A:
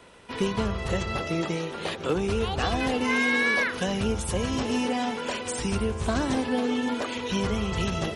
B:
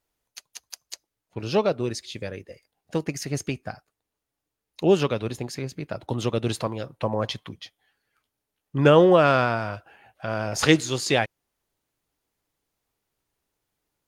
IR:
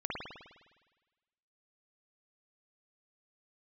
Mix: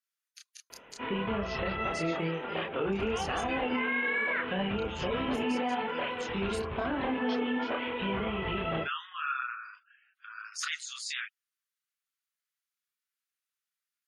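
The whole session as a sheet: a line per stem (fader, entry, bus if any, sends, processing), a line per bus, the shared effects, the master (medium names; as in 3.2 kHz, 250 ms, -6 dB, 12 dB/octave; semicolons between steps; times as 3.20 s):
+2.5 dB, 0.70 s, no send, steep low-pass 3.1 kHz 48 dB/octave
-5.5 dB, 0.00 s, no send, steep high-pass 1.2 kHz 48 dB/octave; spectral gate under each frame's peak -20 dB strong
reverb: none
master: bass shelf 200 Hz -10 dB; chorus voices 6, 0.8 Hz, delay 28 ms, depth 3.9 ms; peak limiter -22 dBFS, peak gain reduction 8.5 dB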